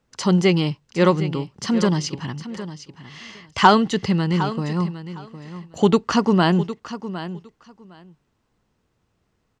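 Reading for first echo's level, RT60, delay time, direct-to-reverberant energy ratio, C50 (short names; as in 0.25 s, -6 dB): -13.0 dB, none, 0.759 s, none, none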